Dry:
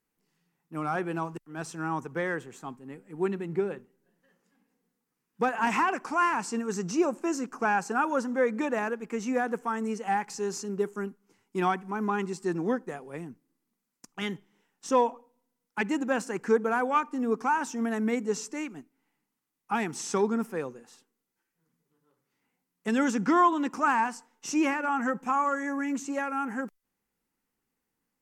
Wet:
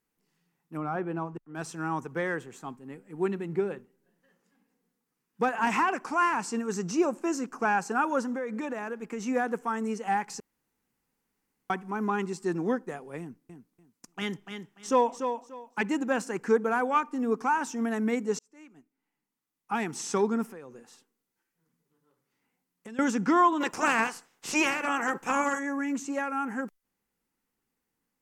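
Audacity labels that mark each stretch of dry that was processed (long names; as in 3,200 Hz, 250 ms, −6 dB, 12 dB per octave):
0.770000	1.550000	low-pass filter 1,100 Hz 6 dB per octave
8.350000	9.230000	downward compressor, threshold −30 dBFS
10.400000	11.700000	fill with room tone
13.200000	15.850000	repeating echo 292 ms, feedback 22%, level −7.5 dB
18.390000	19.980000	fade in
20.480000	22.990000	downward compressor, threshold −41 dBFS
23.600000	25.580000	ceiling on every frequency bin ceiling under each frame's peak by 19 dB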